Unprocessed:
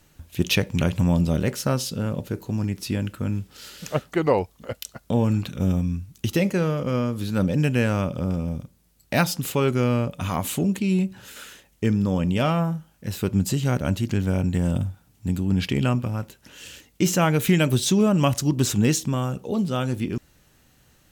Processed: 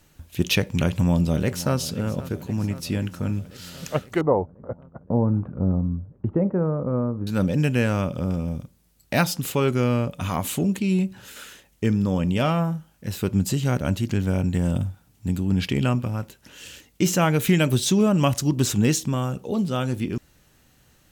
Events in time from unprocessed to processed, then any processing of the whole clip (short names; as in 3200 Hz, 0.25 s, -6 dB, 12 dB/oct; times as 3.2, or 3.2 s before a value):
0.84–1.76 echo throw 0.52 s, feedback 75%, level -16 dB
4.21–7.27 inverse Chebyshev low-pass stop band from 5000 Hz, stop band 70 dB